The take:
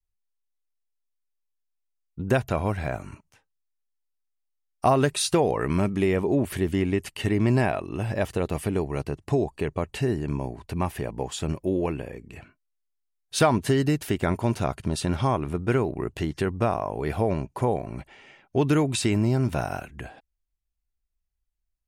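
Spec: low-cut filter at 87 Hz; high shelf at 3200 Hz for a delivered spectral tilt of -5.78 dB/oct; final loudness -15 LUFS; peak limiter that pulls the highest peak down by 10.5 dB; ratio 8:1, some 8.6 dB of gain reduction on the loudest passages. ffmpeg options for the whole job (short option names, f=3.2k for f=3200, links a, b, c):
-af "highpass=87,highshelf=f=3.2k:g=-5,acompressor=threshold=-25dB:ratio=8,volume=20dB,alimiter=limit=-3.5dB:level=0:latency=1"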